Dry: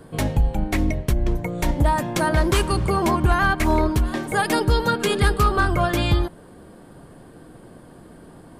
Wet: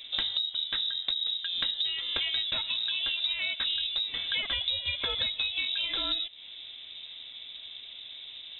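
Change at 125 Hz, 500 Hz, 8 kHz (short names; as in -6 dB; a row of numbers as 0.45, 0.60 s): -32.5 dB, -25.5 dB, under -40 dB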